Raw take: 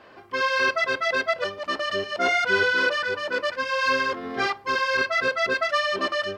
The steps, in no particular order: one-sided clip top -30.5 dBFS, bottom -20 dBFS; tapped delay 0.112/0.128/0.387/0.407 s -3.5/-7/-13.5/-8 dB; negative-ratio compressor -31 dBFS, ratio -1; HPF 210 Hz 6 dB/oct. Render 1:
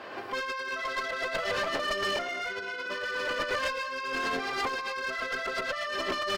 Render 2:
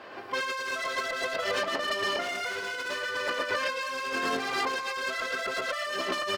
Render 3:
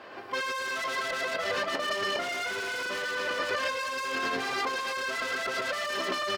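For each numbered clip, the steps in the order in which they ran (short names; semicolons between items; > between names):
tapped delay > negative-ratio compressor > HPF > one-sided clip; one-sided clip > tapped delay > negative-ratio compressor > HPF; tapped delay > one-sided clip > negative-ratio compressor > HPF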